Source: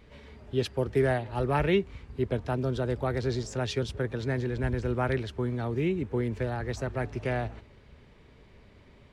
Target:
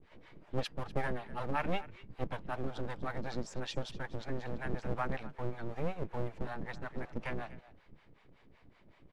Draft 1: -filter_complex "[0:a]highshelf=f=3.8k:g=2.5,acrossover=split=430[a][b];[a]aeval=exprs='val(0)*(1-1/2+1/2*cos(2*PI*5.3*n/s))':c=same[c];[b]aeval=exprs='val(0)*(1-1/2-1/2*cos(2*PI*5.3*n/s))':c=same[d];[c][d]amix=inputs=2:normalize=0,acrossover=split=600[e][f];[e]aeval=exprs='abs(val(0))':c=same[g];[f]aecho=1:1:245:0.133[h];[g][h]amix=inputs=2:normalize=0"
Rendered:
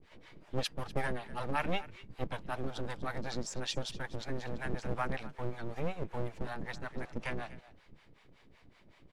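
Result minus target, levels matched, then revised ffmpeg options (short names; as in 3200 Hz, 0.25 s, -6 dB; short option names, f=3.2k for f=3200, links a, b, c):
8000 Hz band +8.0 dB
-filter_complex "[0:a]highshelf=f=3.8k:g=-9,acrossover=split=430[a][b];[a]aeval=exprs='val(0)*(1-1/2+1/2*cos(2*PI*5.3*n/s))':c=same[c];[b]aeval=exprs='val(0)*(1-1/2-1/2*cos(2*PI*5.3*n/s))':c=same[d];[c][d]amix=inputs=2:normalize=0,acrossover=split=600[e][f];[e]aeval=exprs='abs(val(0))':c=same[g];[f]aecho=1:1:245:0.133[h];[g][h]amix=inputs=2:normalize=0"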